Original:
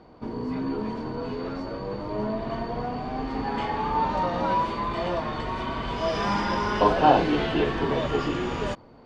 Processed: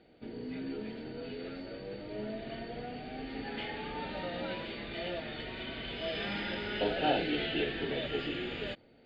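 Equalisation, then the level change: resonant low-pass 4.4 kHz, resonance Q 1.9; bass shelf 260 Hz -10.5 dB; static phaser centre 2.5 kHz, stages 4; -4.0 dB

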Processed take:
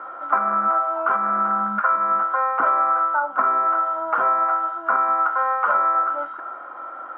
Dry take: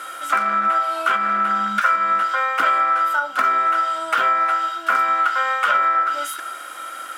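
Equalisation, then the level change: resonant low-pass 1 kHz, resonance Q 2.3; distance through air 360 m; 0.0 dB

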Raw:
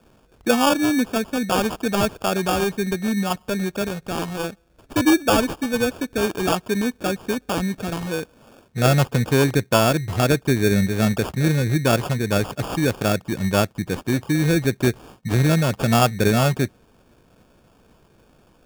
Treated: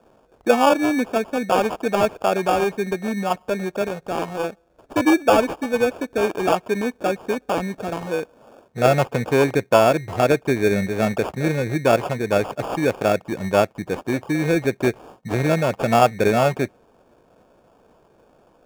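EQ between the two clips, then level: peaking EQ 640 Hz +13.5 dB 2.5 oct; dynamic bell 2.3 kHz, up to +7 dB, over -36 dBFS, Q 2.7; peaking EQ 6.8 kHz +2.5 dB; -8.5 dB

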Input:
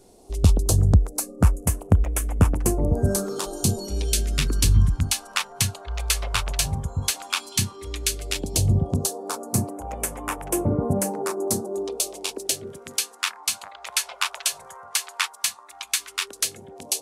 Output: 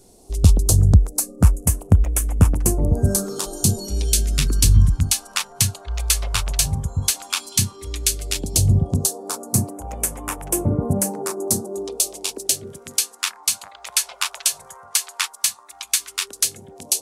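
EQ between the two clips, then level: tone controls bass +5 dB, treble +7 dB; -1.0 dB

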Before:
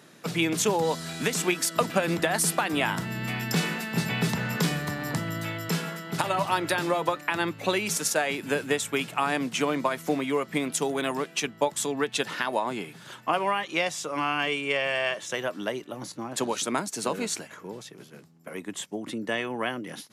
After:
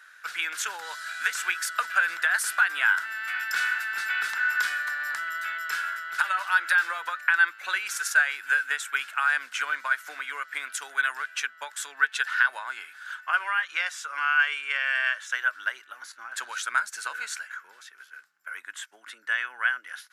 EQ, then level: resonant high-pass 1.5 kHz, resonance Q 10; -5.0 dB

